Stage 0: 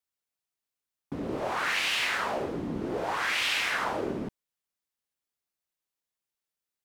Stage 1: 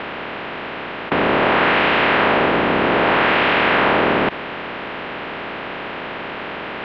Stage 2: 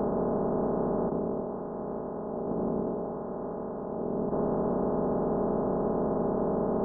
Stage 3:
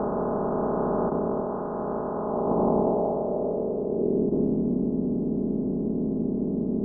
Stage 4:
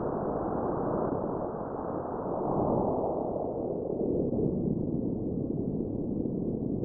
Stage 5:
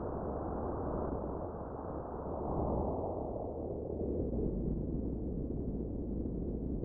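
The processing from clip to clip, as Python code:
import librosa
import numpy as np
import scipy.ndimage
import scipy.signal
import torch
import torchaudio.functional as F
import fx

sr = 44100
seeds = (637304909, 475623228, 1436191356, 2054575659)

y1 = fx.bin_compress(x, sr, power=0.2)
y1 = scipy.signal.sosfilt(scipy.signal.bessel(6, 2100.0, 'lowpass', norm='mag', fs=sr, output='sos'), y1)
y1 = fx.low_shelf(y1, sr, hz=83.0, db=-6.5)
y1 = F.gain(torch.from_numpy(y1), 8.0).numpy()
y2 = y1 + 0.56 * np.pad(y1, (int(4.8 * sr / 1000.0), 0))[:len(y1)]
y2 = fx.over_compress(y2, sr, threshold_db=-21.0, ratio=-0.5)
y2 = scipy.ndimage.gaussian_filter1d(y2, 12.0, mode='constant')
y3 = fx.rider(y2, sr, range_db=10, speed_s=2.0)
y3 = fx.filter_sweep_lowpass(y3, sr, from_hz=1400.0, to_hz=280.0, start_s=2.07, end_s=4.61, q=2.0)
y3 = F.gain(torch.from_numpy(y3), 2.0).numpy()
y4 = fx.whisperise(y3, sr, seeds[0])
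y4 = F.gain(torch.from_numpy(y4), -5.0).numpy()
y5 = fx.octave_divider(y4, sr, octaves=2, level_db=0.0)
y5 = F.gain(torch.from_numpy(y5), -8.0).numpy()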